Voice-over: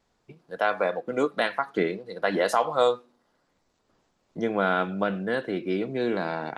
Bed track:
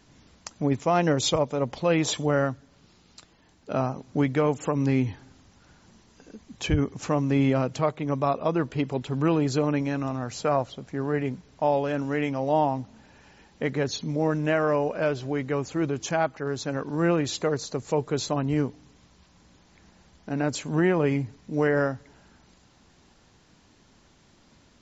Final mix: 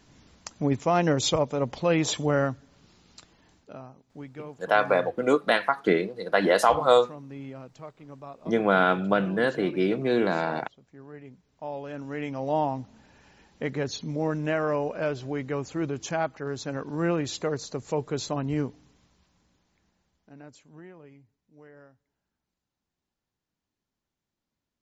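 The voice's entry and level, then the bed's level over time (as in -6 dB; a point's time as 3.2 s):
4.10 s, +3.0 dB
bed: 3.57 s -0.5 dB
3.79 s -18 dB
11.23 s -18 dB
12.48 s -3 dB
18.66 s -3 dB
21.2 s -28.5 dB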